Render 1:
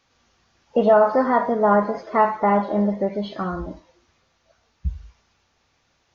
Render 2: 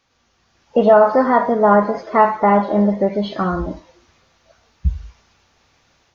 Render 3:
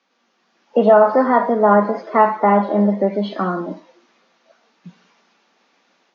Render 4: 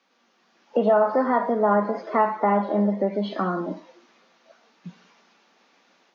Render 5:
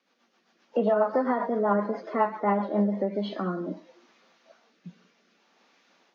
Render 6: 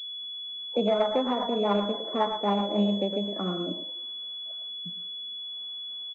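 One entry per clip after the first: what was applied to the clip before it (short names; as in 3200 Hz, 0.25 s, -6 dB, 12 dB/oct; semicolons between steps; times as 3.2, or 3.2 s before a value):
AGC gain up to 7.5 dB
steep high-pass 180 Hz 72 dB/oct; air absorption 100 m
compressor 1.5:1, threshold -29 dBFS, peak gain reduction 8 dB
rotary speaker horn 7.5 Hz, later 0.65 Hz, at 2.56; gain -1.5 dB
air absorption 420 m; speakerphone echo 0.11 s, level -7 dB; pulse-width modulation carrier 3400 Hz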